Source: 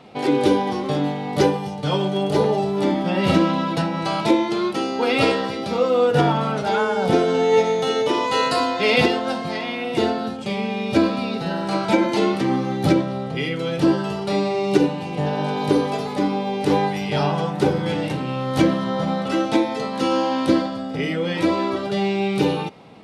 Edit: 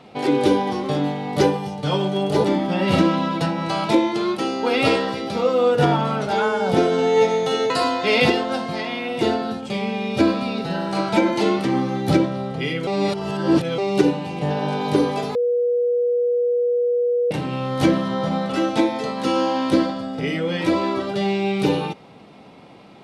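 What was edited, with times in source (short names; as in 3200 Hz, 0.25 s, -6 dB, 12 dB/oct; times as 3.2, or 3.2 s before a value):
2.44–2.8 cut
8.06–8.46 cut
13.63–14.54 reverse
16.11–18.07 bleep 484 Hz -16.5 dBFS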